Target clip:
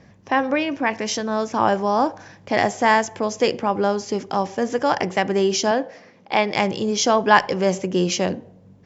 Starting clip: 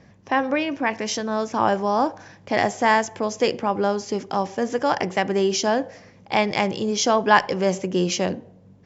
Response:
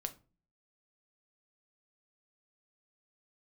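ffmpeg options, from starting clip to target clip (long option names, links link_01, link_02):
-filter_complex "[0:a]asettb=1/sr,asplit=3[link_01][link_02][link_03];[link_01]atrim=end=5.714[link_04];[link_02]atrim=start=5.71:end=6.55,asetpts=PTS-STARTPTS,afade=type=in:duration=0.004:curve=qsin,afade=type=out:start_time=0.836:duration=0.004:curve=qsin,highpass=220,lowpass=5200[link_05];[link_03]atrim=start=6.546[link_06];[link_04][link_05]acrossfade=duration=0.004:curve1=hsin:curve2=qsin[link_07];[link_07][link_06]acrossfade=duration=0.004:curve1=qsin:curve2=hsin,volume=1.5dB"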